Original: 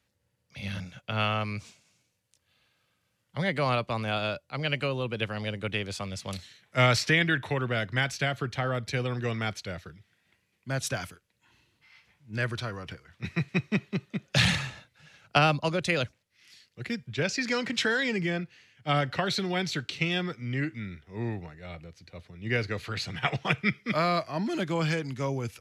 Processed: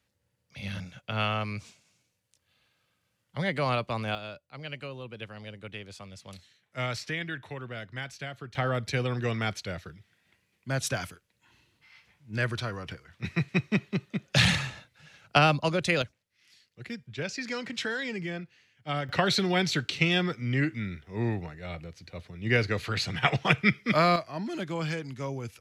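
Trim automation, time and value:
-1 dB
from 4.15 s -10 dB
from 8.55 s +1 dB
from 16.02 s -5.5 dB
from 19.09 s +3.5 dB
from 24.16 s -4 dB

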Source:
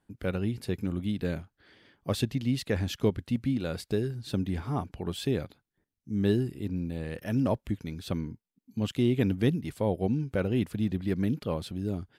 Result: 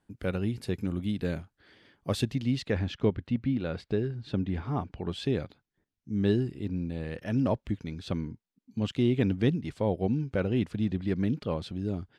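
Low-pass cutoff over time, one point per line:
2.19 s 11 kHz
2.63 s 5.6 kHz
2.86 s 3.2 kHz
4.41 s 3.2 kHz
5.41 s 6 kHz

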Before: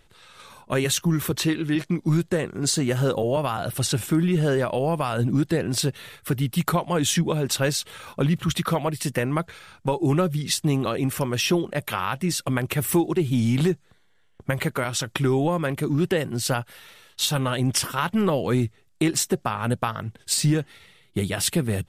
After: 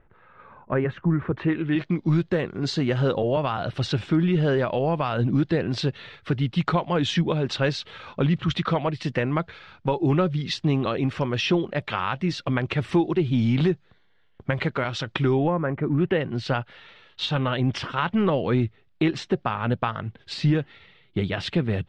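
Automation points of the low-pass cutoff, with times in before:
low-pass 24 dB/octave
1.31 s 1.8 kHz
1.94 s 4.3 kHz
15.33 s 4.3 kHz
15.62 s 1.6 kHz
16.35 s 3.8 kHz

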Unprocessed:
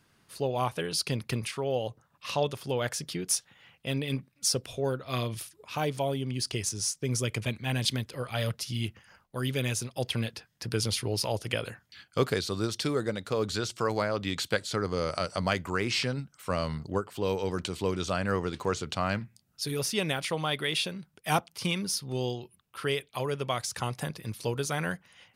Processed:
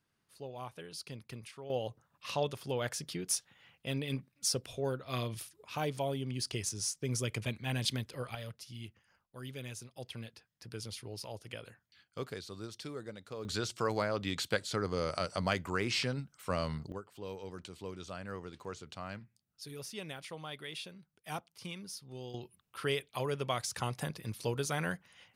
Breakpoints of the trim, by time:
-15 dB
from 1.70 s -5 dB
from 8.35 s -14 dB
from 13.45 s -4 dB
from 16.92 s -14 dB
from 22.34 s -3.5 dB

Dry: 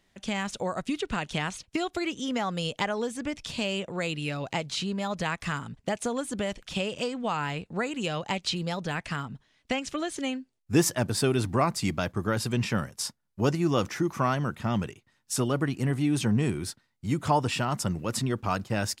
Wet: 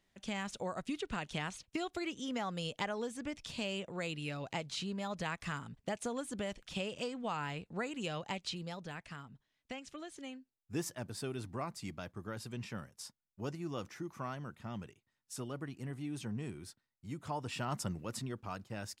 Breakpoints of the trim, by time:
8.16 s -8.5 dB
9.19 s -15.5 dB
17.36 s -15.5 dB
17.72 s -8 dB
18.49 s -14.5 dB

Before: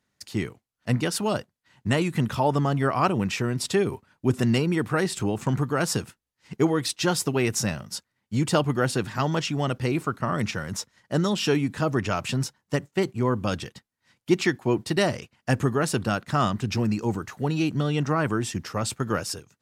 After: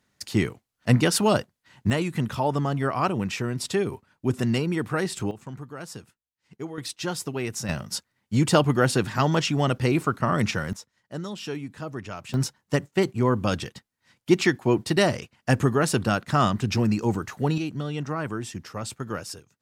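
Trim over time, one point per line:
+5 dB
from 1.90 s -2 dB
from 5.31 s -13.5 dB
from 6.78 s -6 dB
from 7.69 s +3 dB
from 10.73 s -10 dB
from 12.34 s +2 dB
from 17.58 s -5.5 dB

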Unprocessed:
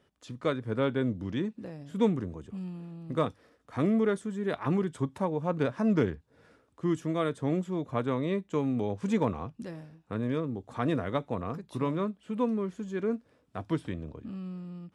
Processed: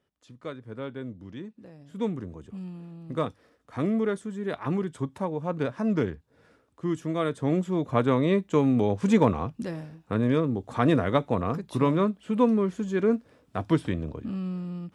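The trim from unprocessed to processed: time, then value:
1.51 s -8 dB
2.48 s 0 dB
6.90 s 0 dB
8.00 s +7 dB

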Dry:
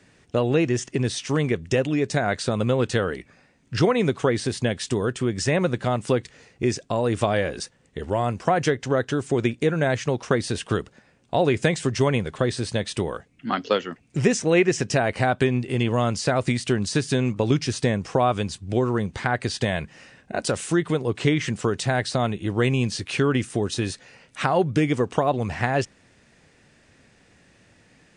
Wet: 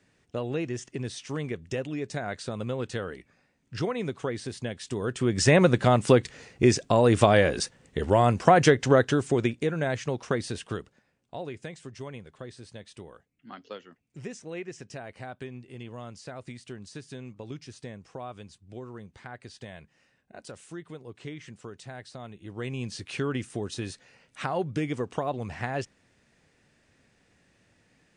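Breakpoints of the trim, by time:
4.85 s -10 dB
5.46 s +3 dB
8.94 s +3 dB
9.68 s -6 dB
10.42 s -6 dB
11.64 s -19 dB
22.24 s -19 dB
23.00 s -8.5 dB

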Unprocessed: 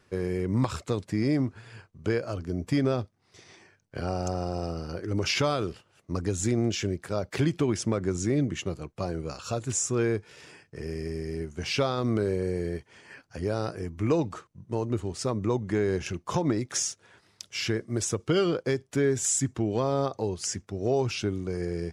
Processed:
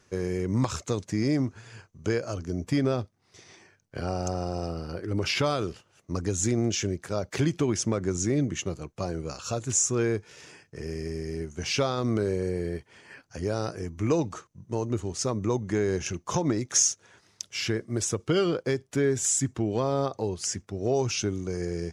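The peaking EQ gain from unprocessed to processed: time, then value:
peaking EQ 6.3 kHz 0.37 oct
+12.5 dB
from 2.64 s +4 dB
from 4.68 s -4 dB
from 5.46 s +7.5 dB
from 12.49 s -0.5 dB
from 13.26 s +9.5 dB
from 17.42 s +2 dB
from 20.95 s +12 dB

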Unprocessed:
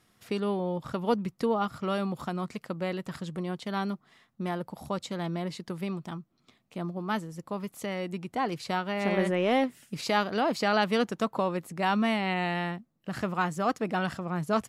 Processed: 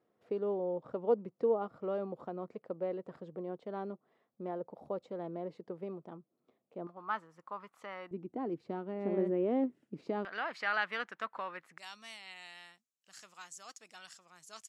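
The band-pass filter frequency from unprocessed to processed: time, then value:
band-pass filter, Q 2.2
480 Hz
from 6.87 s 1.2 kHz
from 8.11 s 330 Hz
from 10.25 s 1.7 kHz
from 11.78 s 6.8 kHz

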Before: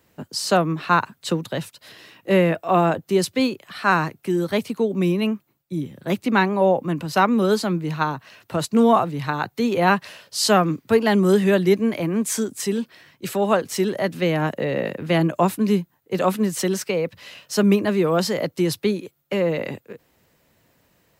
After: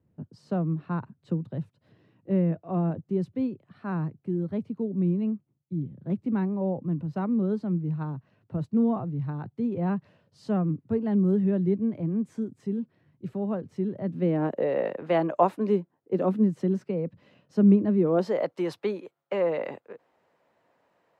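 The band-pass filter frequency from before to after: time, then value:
band-pass filter, Q 1.1
13.98 s 120 Hz
14.74 s 690 Hz
15.44 s 690 Hz
16.56 s 190 Hz
17.96 s 190 Hz
18.43 s 800 Hz

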